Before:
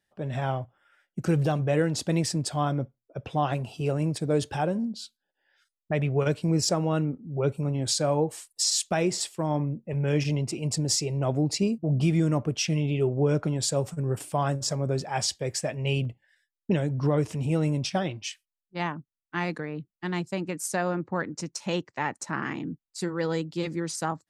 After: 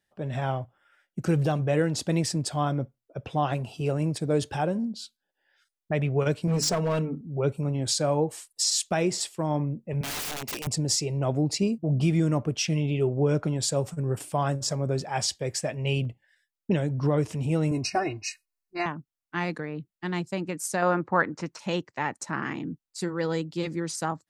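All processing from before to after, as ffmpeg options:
ffmpeg -i in.wav -filter_complex "[0:a]asettb=1/sr,asplit=3[link_01][link_02][link_03];[link_01]atrim=end=6.474[link_04];[link_02]atrim=start=6.47:end=7.21,asetpts=PTS-STARTPTS,afade=type=in:duration=0.004:curve=qsin,afade=type=out:start_time=0.736:duration=0.004:curve=qsin,bandreject=frequency=50:width_type=h:width=6,bandreject=frequency=100:width_type=h:width=6,bandreject=frequency=150:width_type=h:width=6,bandreject=frequency=200:width_type=h:width=6,bandreject=frequency=250:width_type=h:width=6,bandreject=frequency=300:width_type=h:width=6,bandreject=frequency=350:width_type=h:width=6,aecho=1:1:4.5:0.84,atrim=end_sample=32634,asoftclip=type=hard:threshold=-21.5dB[link_05];[link_03]atrim=start=7.206[link_06];[link_04][link_05]acrossfade=duration=0.004:curve1=hsin:curve2=qsin[link_07];[link_07][link_06]acrossfade=duration=0.004:curve1=qsin:curve2=hsin,asettb=1/sr,asplit=3[link_08][link_09][link_10];[link_08]atrim=end=10.014[link_11];[link_09]atrim=start=10.01:end=10.67,asetpts=PTS-STARTPTS,afade=type=in:duration=0.004:curve=qsin,afade=type=out:start_time=0.656:duration=0.004:curve=qsin,highpass=270,highshelf=frequency=2100:gain=11,aeval=exprs='(mod(25.1*val(0)+1,2)-1)/25.1':channel_layout=same[link_12];[link_10]atrim=start=10.666[link_13];[link_11][link_12]acrossfade=duration=0.004:curve1=hsin:curve2=qsin[link_14];[link_14][link_13]acrossfade=duration=0.004:curve1=qsin:curve2=hsin,asettb=1/sr,asplit=3[link_15][link_16][link_17];[link_15]atrim=end=17.714[link_18];[link_16]atrim=start=17.71:end=18.86,asetpts=PTS-STARTPTS,afade=type=in:duration=0.004:curve=qsin,afade=type=out:start_time=1.146:duration=0.004:curve=qsin,asuperstop=centerf=3300:order=20:qfactor=3.5,aecho=1:1:2.8:0.92,atrim=end_sample=50715[link_19];[link_17]atrim=start=18.856[link_20];[link_18][link_19]acrossfade=duration=0.004:curve1=hsin:curve2=qsin[link_21];[link_21][link_20]acrossfade=duration=0.004:curve1=qsin:curve2=hsin,asettb=1/sr,asplit=3[link_22][link_23][link_24];[link_22]atrim=end=20.824[link_25];[link_23]atrim=start=20.82:end=21.59,asetpts=PTS-STARTPTS,afade=type=in:duration=0.004:curve=qsin,afade=type=out:start_time=0.766:duration=0.004:curve=qsin,acrossover=split=3700[link_26][link_27];[link_27]acompressor=threshold=-49dB:ratio=4:attack=1:release=60[link_28];[link_26][link_28]amix=inputs=2:normalize=0,equalizer=frequency=1200:width=0.53:gain=9.5[link_29];[link_24]atrim=start=21.586[link_30];[link_25][link_29]acrossfade=duration=0.004:curve1=hsin:curve2=qsin[link_31];[link_31][link_30]acrossfade=duration=0.004:curve1=qsin:curve2=hsin" out.wav

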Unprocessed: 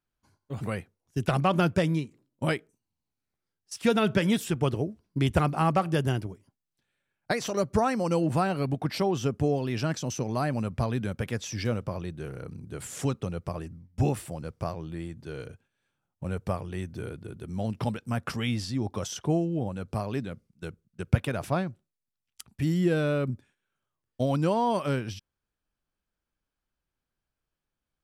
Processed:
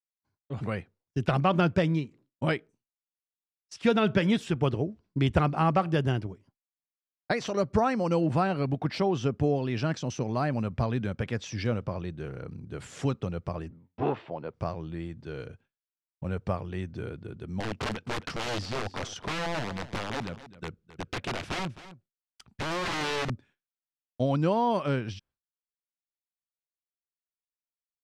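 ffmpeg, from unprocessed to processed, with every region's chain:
ffmpeg -i in.wav -filter_complex "[0:a]asettb=1/sr,asplit=3[link_01][link_02][link_03];[link_01]atrim=end=13.704[link_04];[link_02]atrim=start=13.7:end=14.54,asetpts=PTS-STARTPTS,afade=type=in:duration=0.004:curve=qsin,afade=type=out:start_time=0.836:duration=0.004:curve=qsin,asoftclip=type=hard:threshold=-22.5dB,highpass=180,equalizer=frequency=190:width_type=q:width=4:gain=-5,equalizer=frequency=410:width_type=q:width=4:gain=5,equalizer=frequency=640:width_type=q:width=4:gain=5,equalizer=frequency=930:width_type=q:width=4:gain=8,lowpass=frequency=3700:width=0.5412,lowpass=frequency=3700:width=1.3066[link_05];[link_03]atrim=start=14.536[link_06];[link_04][link_05]acrossfade=duration=0.004:curve1=hsin:curve2=qsin[link_07];[link_07][link_06]acrossfade=duration=0.004:curve1=qsin:curve2=hsin,asettb=1/sr,asplit=3[link_08][link_09][link_10];[link_08]atrim=end=17.604[link_11];[link_09]atrim=start=17.6:end=23.3,asetpts=PTS-STARTPTS,afade=type=in:duration=0.004:curve=qsin,afade=type=out:start_time=5.696:duration=0.004:curve=qsin,aeval=exprs='(mod(18.8*val(0)+1,2)-1)/18.8':channel_layout=same,aecho=1:1:262:0.168,atrim=end_sample=251370[link_12];[link_10]atrim=start=23.296[link_13];[link_11][link_12]acrossfade=duration=0.004:curve1=hsin:curve2=qsin[link_14];[link_14][link_13]acrossfade=duration=0.004:curve1=qsin:curve2=hsin,agate=range=-33dB:threshold=-55dB:ratio=3:detection=peak,lowpass=4700" out.wav

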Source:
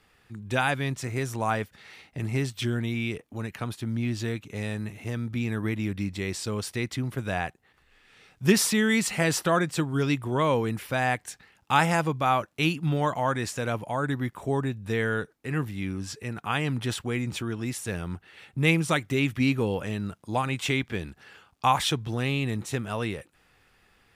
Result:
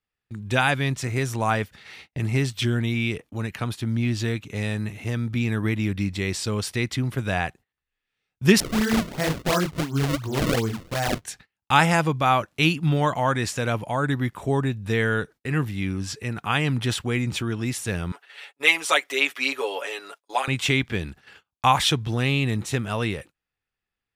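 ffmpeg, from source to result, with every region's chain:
ffmpeg -i in.wav -filter_complex "[0:a]asettb=1/sr,asplit=3[link_01][link_02][link_03];[link_01]atrim=end=8.604[link_04];[link_02]atrim=start=8.6:end=11.25,asetpts=PTS-STARTPTS,afade=type=in:duration=0.004:curve=qsin,afade=type=out:start_time=2.646:duration=0.004:curve=qsin,highshelf=frequency=3500:gain=-11,flanger=delay=17:depth=5.5:speed=2.5,acrusher=samples=31:mix=1:aa=0.000001:lfo=1:lforange=49.6:lforate=2.8[link_05];[link_03]atrim=start=11.246[link_06];[link_04][link_05]acrossfade=duration=0.004:curve1=hsin:curve2=qsin[link_07];[link_07][link_06]acrossfade=duration=0.004:curve1=qsin:curve2=hsin,asettb=1/sr,asplit=3[link_08][link_09][link_10];[link_08]atrim=end=18.124[link_11];[link_09]atrim=start=18.12:end=20.48,asetpts=PTS-STARTPTS,afade=type=in:duration=0.004:curve=qsin,afade=type=out:start_time=2.356:duration=0.004:curve=qsin,highpass=frequency=470:width=0.5412,highpass=frequency=470:width=1.3066,aecho=1:1:7.1:0.84,atrim=end_sample=104076[link_12];[link_10]atrim=start=20.476[link_13];[link_11][link_12]acrossfade=duration=0.004:curve1=hsin:curve2=qsin[link_14];[link_14][link_13]acrossfade=duration=0.004:curve1=qsin:curve2=hsin,equalizer=frequency=3400:width=0.53:gain=3.5,agate=range=-30dB:threshold=-47dB:ratio=16:detection=peak,lowshelf=frequency=150:gain=4.5,volume=2.5dB" out.wav

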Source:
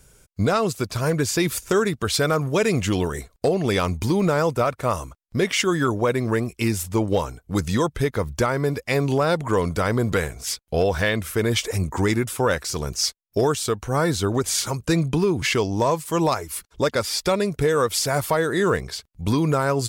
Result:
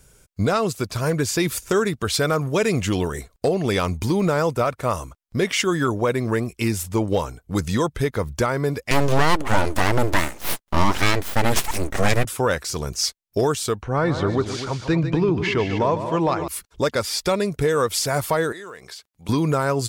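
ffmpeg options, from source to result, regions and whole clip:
ffmpeg -i in.wav -filter_complex "[0:a]asettb=1/sr,asplit=3[link_01][link_02][link_03];[link_01]atrim=end=8.914[link_04];[link_02]atrim=start=8.91:end=12.25,asetpts=PTS-STARTPTS,afade=type=in:duration=0.004:curve=qsin,afade=type=out:start_time=3.336:duration=0.004:curve=qsin,highpass=frequency=120:width=0.5412,highpass=frequency=120:width=1.3066,acontrast=48,aeval=exprs='abs(val(0))':channel_layout=same[link_05];[link_03]atrim=start=12.246[link_06];[link_04][link_05]acrossfade=duration=0.004:curve1=hsin:curve2=qsin[link_07];[link_07][link_06]acrossfade=duration=0.004:curve1=qsin:curve2=hsin,asettb=1/sr,asplit=3[link_08][link_09][link_10];[link_08]atrim=end=13.824[link_11];[link_09]atrim=start=13.82:end=16.48,asetpts=PTS-STARTPTS,afade=type=in:duration=0.004:curve=qsin,afade=type=out:start_time=2.656:duration=0.004:curve=qsin,lowpass=3100,aecho=1:1:149|247:0.316|0.316,atrim=end_sample=117306[link_12];[link_10]atrim=start=16.476[link_13];[link_11][link_12]acrossfade=duration=0.004:curve1=hsin:curve2=qsin[link_14];[link_14][link_13]acrossfade=duration=0.004:curve1=qsin:curve2=hsin,asettb=1/sr,asplit=3[link_15][link_16][link_17];[link_15]atrim=end=18.524[link_18];[link_16]atrim=start=18.52:end=19.29,asetpts=PTS-STARTPTS,afade=type=in:duration=0.004:curve=qsin,afade=type=out:start_time=0.766:duration=0.004:curve=qsin,highpass=frequency=690:poles=1,acompressor=threshold=-34dB:ratio=6:attack=3.2:release=140:knee=1:detection=peak[link_19];[link_17]atrim=start=19.286[link_20];[link_18][link_19]acrossfade=duration=0.004:curve1=hsin:curve2=qsin[link_21];[link_21][link_20]acrossfade=duration=0.004:curve1=qsin:curve2=hsin" out.wav

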